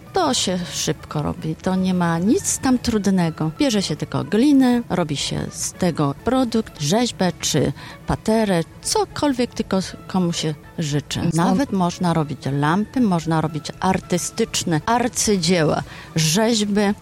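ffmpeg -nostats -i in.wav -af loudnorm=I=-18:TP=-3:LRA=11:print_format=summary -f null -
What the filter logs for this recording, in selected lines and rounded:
Input Integrated:    -20.1 LUFS
Input True Peak:      -7.5 dBTP
Input LRA:             2.0 LU
Input Threshold:     -30.1 LUFS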